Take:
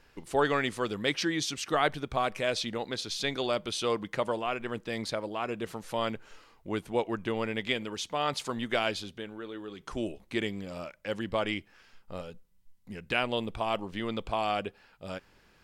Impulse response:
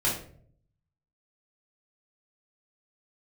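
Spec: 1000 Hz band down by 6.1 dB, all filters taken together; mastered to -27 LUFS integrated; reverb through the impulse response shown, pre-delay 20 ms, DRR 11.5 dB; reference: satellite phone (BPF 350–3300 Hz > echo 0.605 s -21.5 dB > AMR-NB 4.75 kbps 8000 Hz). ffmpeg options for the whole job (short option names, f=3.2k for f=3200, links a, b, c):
-filter_complex "[0:a]equalizer=f=1k:t=o:g=-8.5,asplit=2[a][b];[1:a]atrim=start_sample=2205,adelay=20[c];[b][c]afir=irnorm=-1:irlink=0,volume=-21.5dB[d];[a][d]amix=inputs=2:normalize=0,highpass=350,lowpass=3.3k,aecho=1:1:605:0.0841,volume=11dB" -ar 8000 -c:a libopencore_amrnb -b:a 4750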